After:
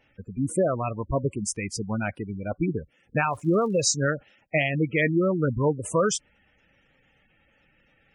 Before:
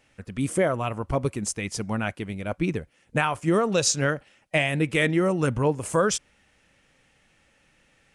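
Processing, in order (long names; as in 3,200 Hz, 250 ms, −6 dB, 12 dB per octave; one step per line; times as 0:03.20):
gate on every frequency bin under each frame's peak −15 dB strong
0:03.30–0:03.93: surface crackle 210 per second −46 dBFS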